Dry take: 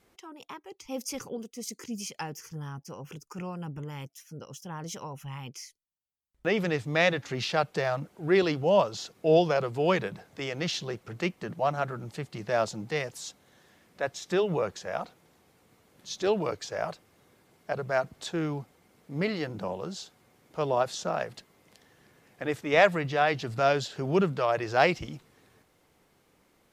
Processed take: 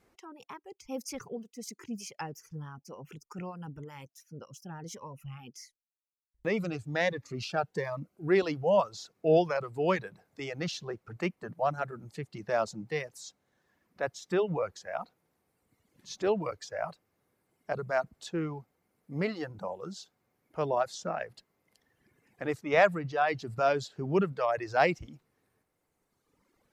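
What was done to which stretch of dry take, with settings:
4.45–8.23 cascading phaser rising 1.4 Hz
whole clip: bell 3300 Hz -5 dB 0.57 oct; reverb removal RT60 1.9 s; high shelf 6000 Hz -5.5 dB; gain -1.5 dB

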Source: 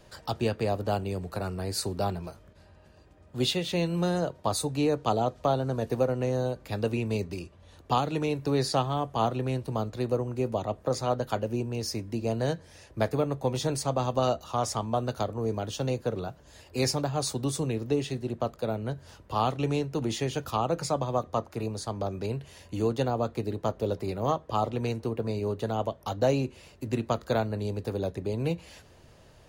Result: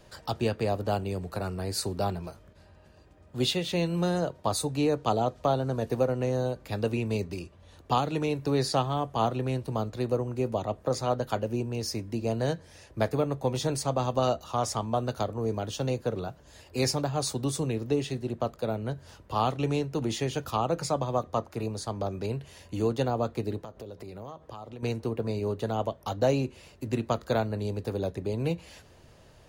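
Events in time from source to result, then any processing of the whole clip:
23.61–24.83 compressor 8:1, threshold -38 dBFS

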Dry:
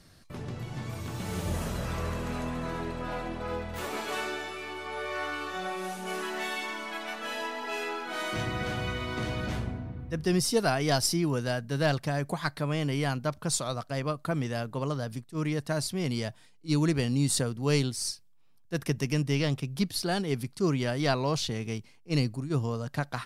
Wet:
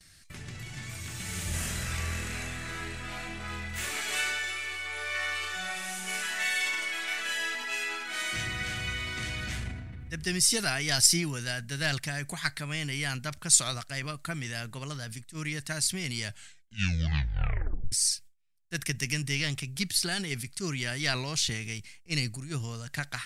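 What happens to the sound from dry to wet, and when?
1.49–7.55 doubler 39 ms -2.5 dB
16.21 tape stop 1.71 s
whole clip: gate with hold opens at -49 dBFS; graphic EQ 125/250/500/1000/2000/8000 Hz -4/-7/-11/-9/+7/+9 dB; transient shaper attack +2 dB, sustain +6 dB

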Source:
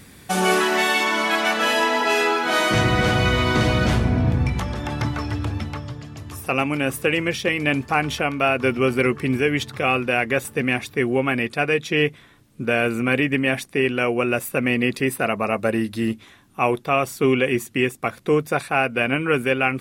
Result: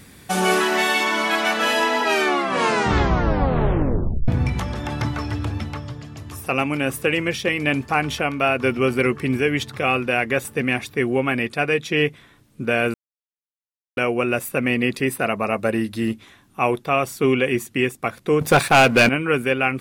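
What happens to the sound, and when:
2.03 tape stop 2.25 s
12.94–13.97 mute
18.41–19.09 sample leveller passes 3

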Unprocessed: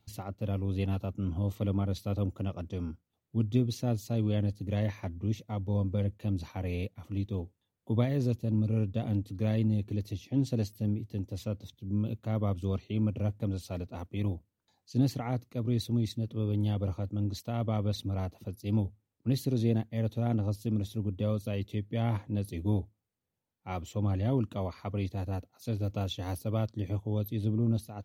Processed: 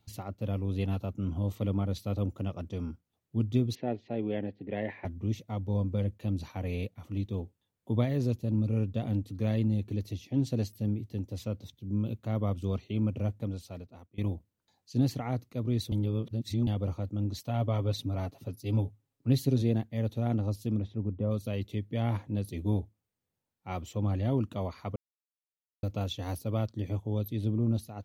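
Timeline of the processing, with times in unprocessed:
3.75–5.05 speaker cabinet 220–2900 Hz, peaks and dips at 400 Hz +6 dB, 770 Hz +5 dB, 1200 Hz -9 dB, 1900 Hz +7 dB
13.24–14.18 fade out, to -22.5 dB
15.92–16.67 reverse
17.37–19.62 comb 7.3 ms, depth 58%
20.76–21.3 LPF 2600 Hz -> 1100 Hz
24.96–25.83 mute

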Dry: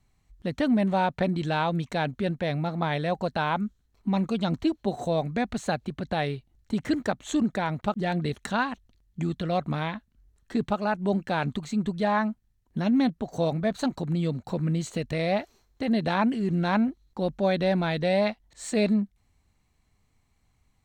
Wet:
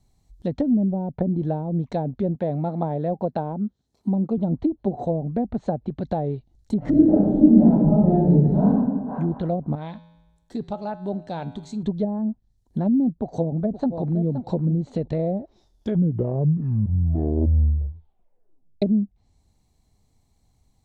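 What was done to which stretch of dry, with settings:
2.35–4.38 HPF 130 Hz
5.05–6.02 high shelf 3400 Hz -10 dB
6.78–8.71 reverb throw, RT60 1.5 s, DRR -11 dB
9.75–11.83 resonator 56 Hz, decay 1.1 s, harmonics odd
13.19–14.23 echo throw 0.52 s, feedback 10%, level -11 dB
15.23 tape stop 3.59 s
whole clip: treble ducked by the level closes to 320 Hz, closed at -21 dBFS; band shelf 1800 Hz -10.5 dB; gain +4.5 dB

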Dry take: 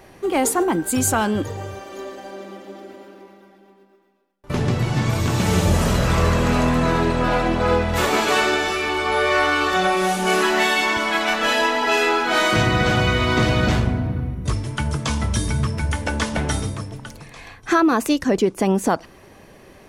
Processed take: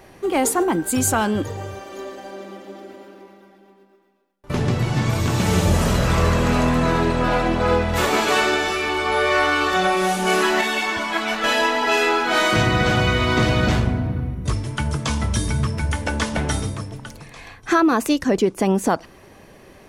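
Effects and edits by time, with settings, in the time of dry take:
10.61–11.44 ensemble effect

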